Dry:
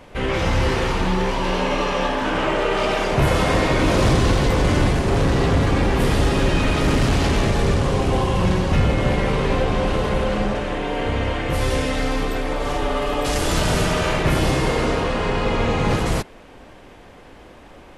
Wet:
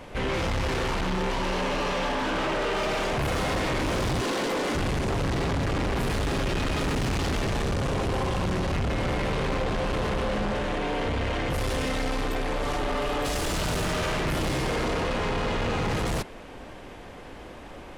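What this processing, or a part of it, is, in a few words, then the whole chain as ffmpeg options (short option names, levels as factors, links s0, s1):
saturation between pre-emphasis and de-emphasis: -filter_complex "[0:a]asettb=1/sr,asplit=3[s0][s1][s2];[s0]atrim=end=4.214[s3];[s1]atrim=start=4.21:end=4.75,asetpts=PTS-STARTPTS,afade=t=in:d=0.004:c=qsin,afade=t=out:st=0.536:d=0.004:c=qsin,highpass=f=230:w=0.5412,highpass=f=230:w=1.3066[s4];[s2]atrim=start=4.746[s5];[s3][s4]acrossfade=d=0.004:c1=hsin:c2=qsin[s6];[s6][s5]acrossfade=d=0.004:c1=qsin:c2=hsin,highshelf=f=7200:g=10.5,asoftclip=type=tanh:threshold=0.0501,highshelf=f=7200:g=-10.5,volume=1.19"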